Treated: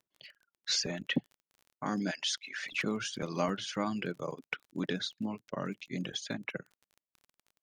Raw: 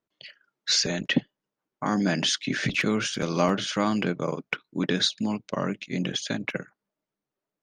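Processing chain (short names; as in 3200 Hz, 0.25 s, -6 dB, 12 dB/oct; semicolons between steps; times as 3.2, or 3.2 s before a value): reverb removal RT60 0.99 s; 2.11–2.72 HPF 1100 Hz 12 dB/oct; 4.93–5.6 high shelf 3300 Hz -9.5 dB; crackle 22/s -39 dBFS; gain -7.5 dB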